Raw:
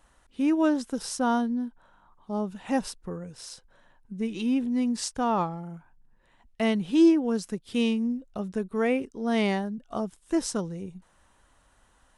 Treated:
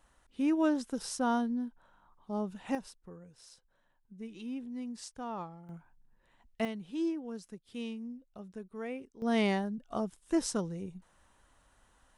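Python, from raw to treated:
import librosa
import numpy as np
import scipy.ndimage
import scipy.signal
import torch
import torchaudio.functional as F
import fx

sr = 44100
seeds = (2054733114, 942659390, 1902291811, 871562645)

y = fx.gain(x, sr, db=fx.steps((0.0, -5.0), (2.75, -14.0), (5.69, -5.0), (6.65, -14.5), (9.22, -3.5)))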